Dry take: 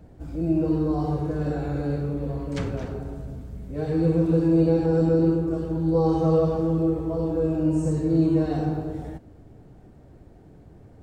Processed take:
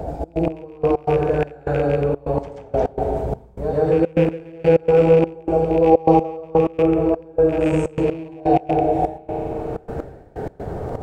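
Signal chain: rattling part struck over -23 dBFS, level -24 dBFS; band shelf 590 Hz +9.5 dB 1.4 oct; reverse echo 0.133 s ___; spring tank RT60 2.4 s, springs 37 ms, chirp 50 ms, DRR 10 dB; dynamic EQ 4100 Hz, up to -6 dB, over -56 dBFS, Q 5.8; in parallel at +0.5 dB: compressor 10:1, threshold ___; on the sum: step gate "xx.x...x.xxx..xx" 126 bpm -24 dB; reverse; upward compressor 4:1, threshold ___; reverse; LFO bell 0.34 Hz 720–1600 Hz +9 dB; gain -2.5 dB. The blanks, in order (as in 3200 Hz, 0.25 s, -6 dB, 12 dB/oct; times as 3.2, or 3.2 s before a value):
-6.5 dB, -22 dBFS, -17 dBFS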